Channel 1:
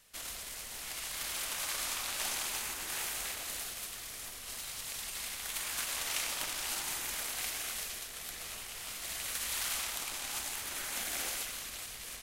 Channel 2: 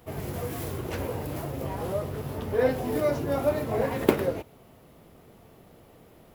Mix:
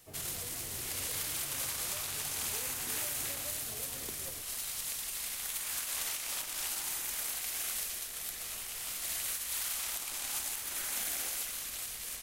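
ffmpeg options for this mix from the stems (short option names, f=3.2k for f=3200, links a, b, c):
-filter_complex "[0:a]highshelf=f=7.4k:g=9,alimiter=limit=-20.5dB:level=0:latency=1:release=208,volume=-1dB[a];[1:a]acrossover=split=120|3000[b][c][d];[c]acompressor=threshold=-33dB:ratio=6[e];[b][e][d]amix=inputs=3:normalize=0,volume=-15dB[f];[a][f]amix=inputs=2:normalize=0,alimiter=limit=-24dB:level=0:latency=1:release=445"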